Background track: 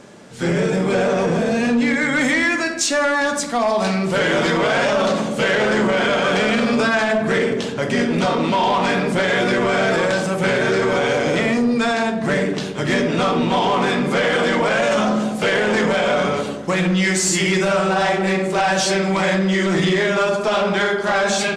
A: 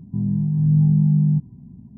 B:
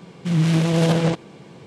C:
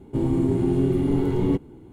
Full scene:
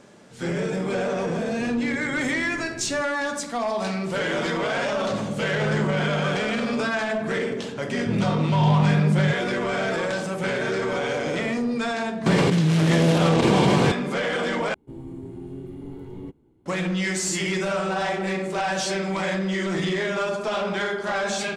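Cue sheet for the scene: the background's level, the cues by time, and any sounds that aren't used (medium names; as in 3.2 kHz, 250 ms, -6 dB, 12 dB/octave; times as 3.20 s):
background track -7.5 dB
1.45 s: add C -17.5 dB
4.97 s: add A -11.5 dB
7.93 s: add A -3.5 dB
12.26 s: add B -3.5 dB + level flattener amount 100%
14.74 s: replace with C -15.5 dB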